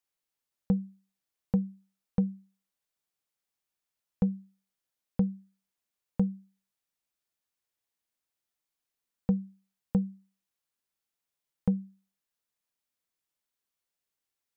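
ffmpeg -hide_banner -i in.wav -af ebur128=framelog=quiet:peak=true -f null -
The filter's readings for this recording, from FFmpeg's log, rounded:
Integrated loudness:
  I:         -32.7 LUFS
  Threshold: -44.0 LUFS
Loudness range:
  LRA:         4.8 LU
  Threshold: -57.7 LUFS
  LRA low:   -40.6 LUFS
  LRA high:  -35.9 LUFS
True peak:
  Peak:      -14.7 dBFS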